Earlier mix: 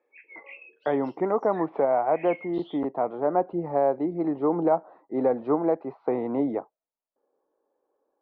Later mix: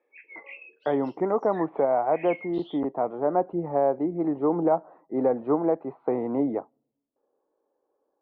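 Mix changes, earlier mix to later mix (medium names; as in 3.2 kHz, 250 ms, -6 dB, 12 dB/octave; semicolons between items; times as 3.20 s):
speech: add distance through air 400 m; reverb: on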